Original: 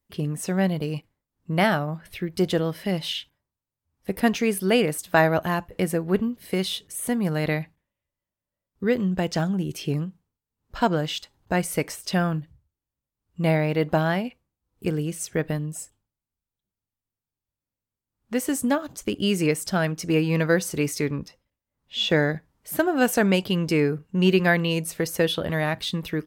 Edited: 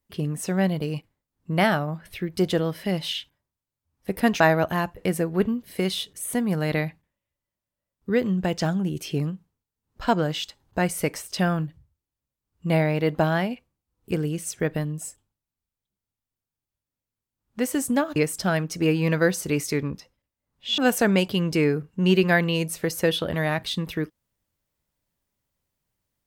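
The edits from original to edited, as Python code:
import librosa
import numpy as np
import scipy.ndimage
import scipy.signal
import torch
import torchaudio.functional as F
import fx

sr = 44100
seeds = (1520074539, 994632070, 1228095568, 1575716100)

y = fx.edit(x, sr, fx.cut(start_s=4.4, length_s=0.74),
    fx.cut(start_s=18.9, length_s=0.54),
    fx.cut(start_s=22.06, length_s=0.88), tone=tone)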